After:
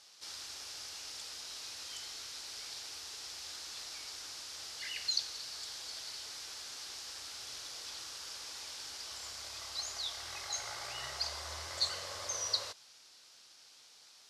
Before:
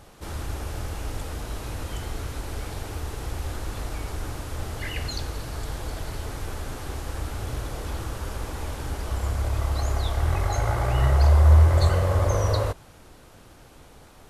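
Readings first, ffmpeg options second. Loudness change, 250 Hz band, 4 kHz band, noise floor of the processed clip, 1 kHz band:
−13.5 dB, −28.0 dB, +2.0 dB, −60 dBFS, −16.5 dB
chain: -af "bandpass=frequency=5000:width_type=q:width=2.6:csg=0,volume=6dB"

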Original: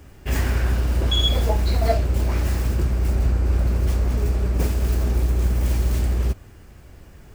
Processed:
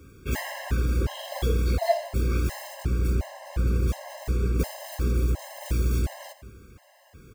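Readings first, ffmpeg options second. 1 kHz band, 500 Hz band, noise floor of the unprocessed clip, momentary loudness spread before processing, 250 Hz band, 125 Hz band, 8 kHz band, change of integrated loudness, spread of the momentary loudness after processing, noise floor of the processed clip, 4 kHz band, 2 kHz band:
−2.5 dB, −2.5 dB, −45 dBFS, 3 LU, −3.5 dB, −6.5 dB, −3.5 dB, −6.0 dB, 7 LU, −56 dBFS, −12.5 dB, −3.0 dB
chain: -af "highpass=frequency=100:poles=1,aecho=1:1:83|166|249|332:0.188|0.0791|0.0332|0.014,afftfilt=real='re*gt(sin(2*PI*1.4*pts/sr)*(1-2*mod(floor(b*sr/1024/540),2)),0)':imag='im*gt(sin(2*PI*1.4*pts/sr)*(1-2*mod(floor(b*sr/1024/540),2)),0)':win_size=1024:overlap=0.75"

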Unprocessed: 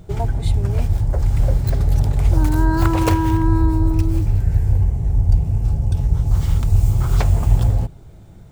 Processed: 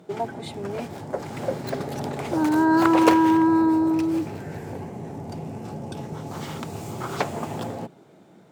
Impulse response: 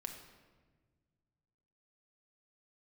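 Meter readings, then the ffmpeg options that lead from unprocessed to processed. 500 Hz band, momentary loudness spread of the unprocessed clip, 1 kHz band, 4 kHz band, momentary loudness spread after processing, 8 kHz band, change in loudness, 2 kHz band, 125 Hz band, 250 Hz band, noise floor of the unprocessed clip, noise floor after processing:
+3.0 dB, 3 LU, +3.0 dB, −0.5 dB, 18 LU, −4.0 dB, −5.0 dB, +2.5 dB, −19.0 dB, +2.5 dB, −41 dBFS, −52 dBFS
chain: -af "dynaudnorm=framelen=210:gausssize=11:maxgain=11.5dB,highpass=frequency=210:width=0.5412,highpass=frequency=210:width=1.3066,aemphasis=mode=reproduction:type=cd"

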